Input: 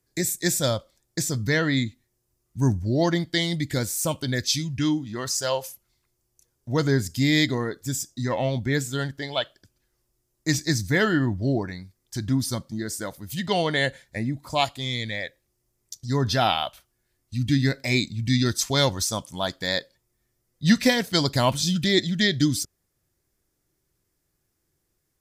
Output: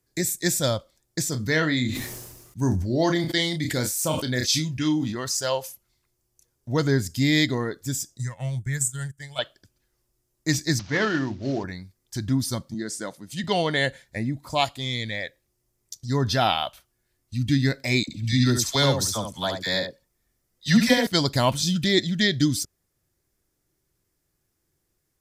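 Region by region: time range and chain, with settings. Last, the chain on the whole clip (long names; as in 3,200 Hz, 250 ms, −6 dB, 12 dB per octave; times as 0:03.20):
0:01.29–0:05.15: low-shelf EQ 89 Hz −11 dB + double-tracking delay 32 ms −9 dB + level that may fall only so fast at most 45 dB per second
0:08.17–0:09.39: drawn EQ curve 140 Hz 0 dB, 260 Hz −18 dB, 370 Hz −19 dB, 1,800 Hz −5 dB, 4,200 Hz −13 dB, 8,400 Hz +14 dB, 13,000 Hz +3 dB + transient designer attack +2 dB, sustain −12 dB
0:10.79–0:11.64: variable-slope delta modulation 32 kbit/s + high-pass filter 220 Hz 6 dB per octave + mains-hum notches 60/120/180/240/300/360/420/480 Hz
0:12.74–0:13.44: Chebyshev band-pass filter 190–8,500 Hz + one half of a high-frequency compander decoder only
0:18.03–0:21.07: all-pass dispersion lows, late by 51 ms, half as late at 890 Hz + single-tap delay 71 ms −6.5 dB
whole clip: no processing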